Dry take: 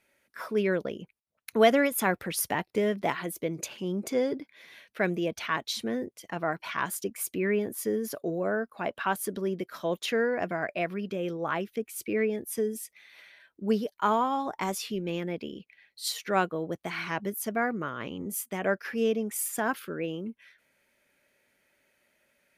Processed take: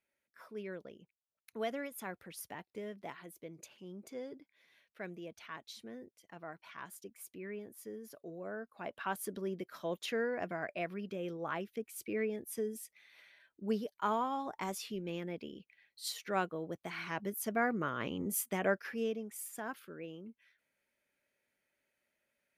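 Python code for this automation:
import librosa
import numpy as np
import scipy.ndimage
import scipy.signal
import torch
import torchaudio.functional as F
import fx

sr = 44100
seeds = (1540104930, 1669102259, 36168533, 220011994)

y = fx.gain(x, sr, db=fx.line((8.15, -17.0), (9.2, -8.0), (16.98, -8.0), (17.96, -1.5), (18.52, -1.5), (19.31, -13.0)))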